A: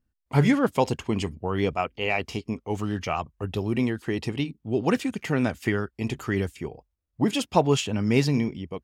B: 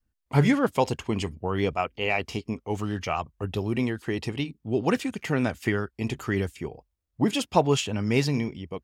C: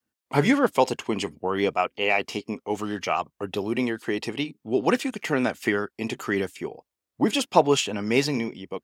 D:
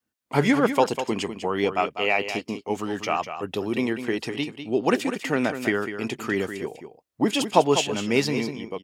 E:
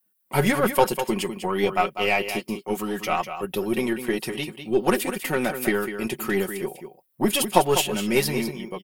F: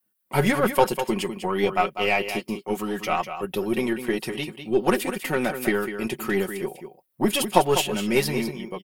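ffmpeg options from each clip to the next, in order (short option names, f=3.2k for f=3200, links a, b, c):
-af "adynamicequalizer=threshold=0.0178:dfrequency=220:dqfactor=0.86:tfrequency=220:tqfactor=0.86:attack=5:release=100:ratio=0.375:range=2:mode=cutabove:tftype=bell"
-af "highpass=240,volume=3.5dB"
-af "aecho=1:1:198:0.335"
-af "aecho=1:1:5.4:0.7,aeval=exprs='1*(cos(1*acos(clip(val(0)/1,-1,1)))-cos(1*PI/2))+0.0501*(cos(8*acos(clip(val(0)/1,-1,1)))-cos(8*PI/2))':c=same,aexciter=amount=5.3:drive=6.9:freq=9.2k,volume=-1dB"
-af "highshelf=f=7.2k:g=-4.5"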